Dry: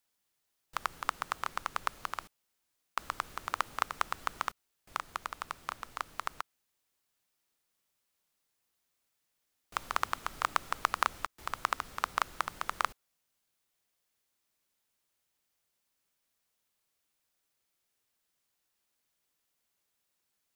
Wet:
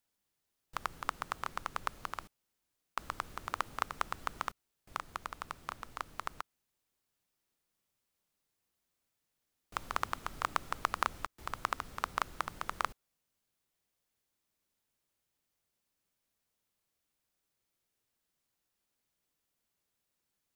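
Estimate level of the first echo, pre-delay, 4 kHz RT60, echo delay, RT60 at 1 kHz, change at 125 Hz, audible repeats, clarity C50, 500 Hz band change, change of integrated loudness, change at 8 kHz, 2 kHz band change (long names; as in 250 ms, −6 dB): no echo audible, no reverb audible, no reverb audible, no echo audible, no reverb audible, +2.5 dB, no echo audible, no reverb audible, −1.0 dB, −3.0 dB, −4.0 dB, −3.5 dB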